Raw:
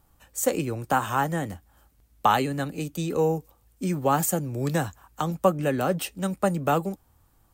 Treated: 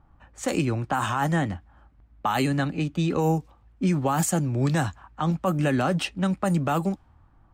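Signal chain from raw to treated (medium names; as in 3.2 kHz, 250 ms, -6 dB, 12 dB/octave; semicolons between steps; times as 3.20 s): level-controlled noise filter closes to 1.5 kHz, open at -17.5 dBFS; peaking EQ 470 Hz -8 dB 0.57 oct; peak limiter -20.5 dBFS, peak gain reduction 11.5 dB; trim +6 dB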